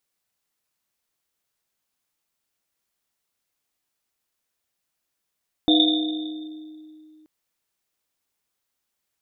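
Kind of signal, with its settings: Risset drum length 1.58 s, pitch 310 Hz, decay 2.79 s, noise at 3.6 kHz, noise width 200 Hz, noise 40%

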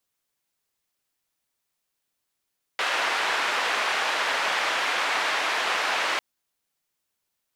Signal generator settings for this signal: noise band 670–2200 Hz, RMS -25.5 dBFS 3.40 s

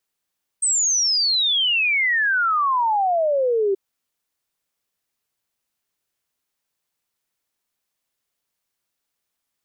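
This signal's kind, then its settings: log sweep 8.4 kHz -> 380 Hz 3.13 s -16.5 dBFS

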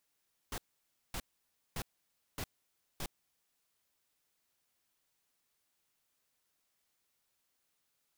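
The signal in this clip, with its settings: noise bursts pink, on 0.06 s, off 0.56 s, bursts 5, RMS -39 dBFS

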